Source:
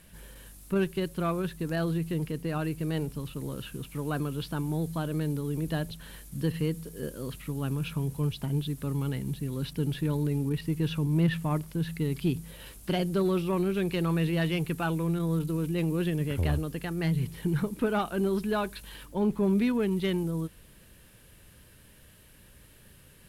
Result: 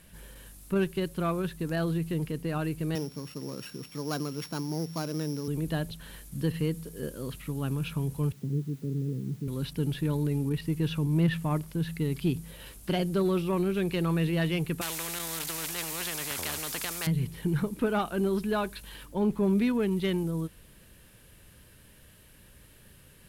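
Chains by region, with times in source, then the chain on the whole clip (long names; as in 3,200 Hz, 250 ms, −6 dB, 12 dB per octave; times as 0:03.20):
0:02.95–0:05.48: samples sorted by size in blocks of 8 samples + high-pass filter 170 Hz
0:08.32–0:09.48: elliptic band-pass filter 110–450 Hz + high-frequency loss of the air 82 metres + bit-depth reduction 10 bits, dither triangular
0:14.81–0:17.07: high-pass filter 260 Hz 6 dB per octave + parametric band 1,900 Hz +5.5 dB 0.26 octaves + every bin compressed towards the loudest bin 4 to 1
whole clip: no processing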